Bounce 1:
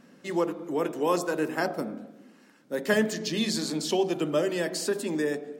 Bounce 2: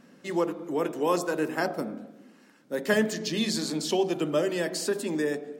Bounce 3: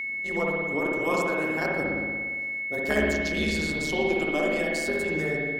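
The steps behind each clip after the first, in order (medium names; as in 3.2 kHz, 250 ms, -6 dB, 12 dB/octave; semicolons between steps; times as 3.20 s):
no audible change
AM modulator 150 Hz, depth 85%; spring tank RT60 1.5 s, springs 57 ms, chirp 70 ms, DRR -2 dB; whistle 2.2 kHz -29 dBFS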